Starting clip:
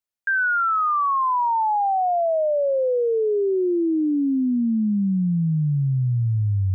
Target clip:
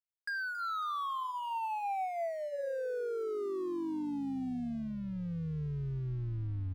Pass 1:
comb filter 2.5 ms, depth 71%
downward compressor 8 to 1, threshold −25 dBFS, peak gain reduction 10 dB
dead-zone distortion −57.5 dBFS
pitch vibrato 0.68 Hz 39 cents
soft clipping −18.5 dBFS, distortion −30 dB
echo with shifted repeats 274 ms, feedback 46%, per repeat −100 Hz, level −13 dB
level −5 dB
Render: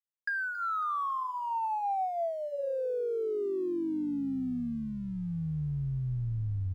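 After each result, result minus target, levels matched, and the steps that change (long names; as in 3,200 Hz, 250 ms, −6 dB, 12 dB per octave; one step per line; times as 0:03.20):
soft clipping: distortion −15 dB; dead-zone distortion: distortion −7 dB
change: soft clipping −28.5 dBFS, distortion −15 dB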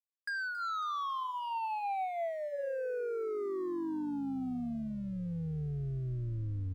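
dead-zone distortion: distortion −7 dB
change: dead-zone distortion −50.5 dBFS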